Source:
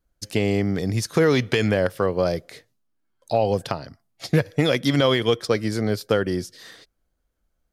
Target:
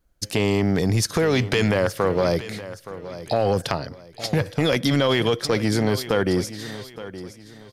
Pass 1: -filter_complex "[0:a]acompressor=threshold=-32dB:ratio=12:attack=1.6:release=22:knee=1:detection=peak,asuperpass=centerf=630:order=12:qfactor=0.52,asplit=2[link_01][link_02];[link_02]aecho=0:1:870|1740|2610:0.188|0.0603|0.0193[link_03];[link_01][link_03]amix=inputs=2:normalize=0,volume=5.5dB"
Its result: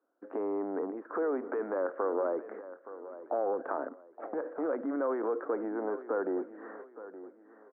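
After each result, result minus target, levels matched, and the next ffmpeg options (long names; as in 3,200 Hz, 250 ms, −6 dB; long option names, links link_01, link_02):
downward compressor: peak gain reduction +9.5 dB; 500 Hz band +2.5 dB
-filter_complex "[0:a]acompressor=threshold=-21.5dB:ratio=12:attack=1.6:release=22:knee=1:detection=peak,asuperpass=centerf=630:order=12:qfactor=0.52,asplit=2[link_01][link_02];[link_02]aecho=0:1:870|1740|2610:0.188|0.0603|0.0193[link_03];[link_01][link_03]amix=inputs=2:normalize=0,volume=5.5dB"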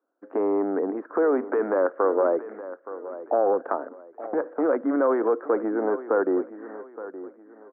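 500 Hz band +2.5 dB
-filter_complex "[0:a]acompressor=threshold=-21.5dB:ratio=12:attack=1.6:release=22:knee=1:detection=peak,asplit=2[link_01][link_02];[link_02]aecho=0:1:870|1740|2610:0.188|0.0603|0.0193[link_03];[link_01][link_03]amix=inputs=2:normalize=0,volume=5.5dB"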